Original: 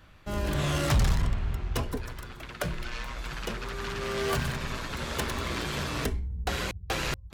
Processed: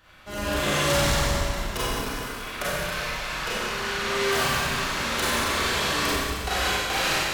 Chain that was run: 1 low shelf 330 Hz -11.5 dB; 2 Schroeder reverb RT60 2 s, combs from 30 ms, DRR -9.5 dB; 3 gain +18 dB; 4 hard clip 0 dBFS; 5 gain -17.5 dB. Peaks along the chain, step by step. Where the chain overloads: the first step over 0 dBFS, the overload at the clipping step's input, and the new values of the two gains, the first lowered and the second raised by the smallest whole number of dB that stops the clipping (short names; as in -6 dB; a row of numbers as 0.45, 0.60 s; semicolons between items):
-17.0, -8.5, +9.5, 0.0, -17.5 dBFS; step 3, 9.5 dB; step 3 +8 dB, step 5 -7.5 dB